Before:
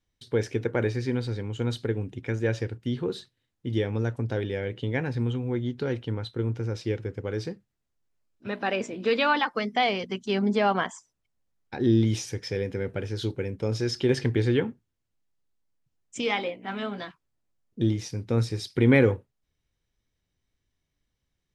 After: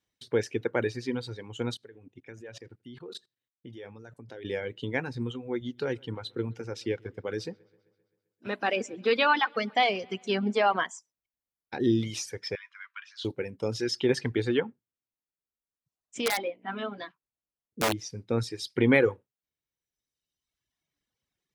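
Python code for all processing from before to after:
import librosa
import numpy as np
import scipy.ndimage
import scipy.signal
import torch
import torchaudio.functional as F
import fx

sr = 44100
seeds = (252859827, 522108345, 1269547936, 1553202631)

y = fx.chain(x, sr, fx.level_steps(step_db=20),
    fx.echo_single(ms=84, db=-21.5), at=(1.74, 4.45))
y = fx.chain(y, sr, fx.highpass(hz=47.0, slope=12),
    fx.echo_wet_lowpass(ms=131, feedback_pct=60, hz=4000.0, wet_db=-17.0), at=(5.61, 10.79))
y = fx.chain(y, sr, fx.brickwall_highpass(low_hz=970.0),
    fx.air_absorb(metres=110.0),
    fx.doubler(ms=17.0, db=-13.5), at=(12.55, 13.25))
y = fx.chain(y, sr, fx.high_shelf(hz=2900.0, db=-5.0),
    fx.overflow_wrap(gain_db=18.5), at=(14.6, 17.93))
y = fx.dereverb_blind(y, sr, rt60_s=1.4)
y = fx.highpass(y, sr, hz=250.0, slope=6)
y = y * librosa.db_to_amplitude(1.0)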